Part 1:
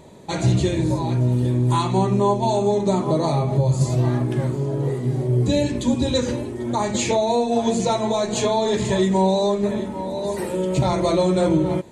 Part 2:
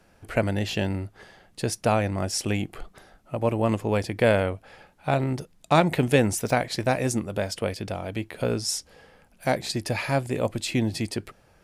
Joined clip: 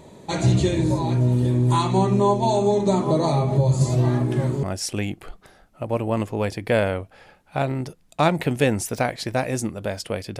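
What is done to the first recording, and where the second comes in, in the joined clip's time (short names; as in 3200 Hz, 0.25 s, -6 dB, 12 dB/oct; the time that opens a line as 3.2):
part 1
4.63 switch to part 2 from 2.15 s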